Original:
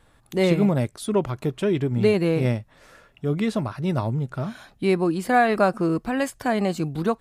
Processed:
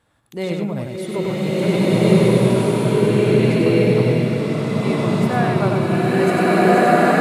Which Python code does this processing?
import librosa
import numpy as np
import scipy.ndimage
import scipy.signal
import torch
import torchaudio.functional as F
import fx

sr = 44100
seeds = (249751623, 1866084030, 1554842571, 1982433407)

y = scipy.signal.sosfilt(scipy.signal.butter(2, 74.0, 'highpass', fs=sr, output='sos'), x)
y = y + 10.0 ** (-4.5 / 20.0) * np.pad(y, (int(98 * sr / 1000.0), 0))[:len(y)]
y = fx.rev_bloom(y, sr, seeds[0], attack_ms=1670, drr_db=-11.0)
y = F.gain(torch.from_numpy(y), -5.0).numpy()